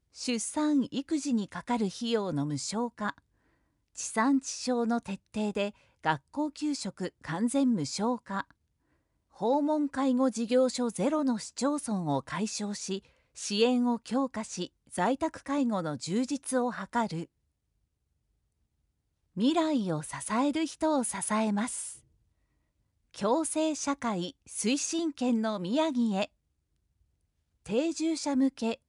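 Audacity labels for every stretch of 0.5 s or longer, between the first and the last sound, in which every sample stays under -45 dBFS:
3.180000	3.960000	silence
8.510000	9.360000	silence
17.250000	19.360000	silence
21.970000	23.140000	silence
26.260000	27.660000	silence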